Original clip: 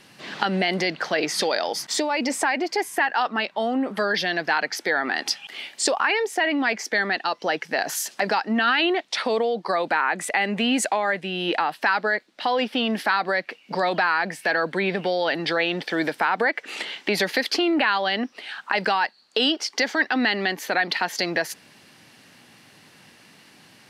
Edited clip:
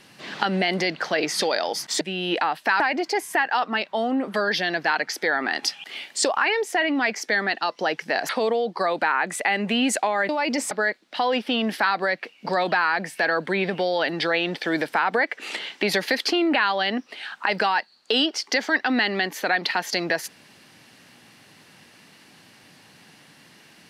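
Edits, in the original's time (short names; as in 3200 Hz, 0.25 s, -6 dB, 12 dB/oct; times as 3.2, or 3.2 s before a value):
2.01–2.43 swap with 11.18–11.97
7.92–9.18 cut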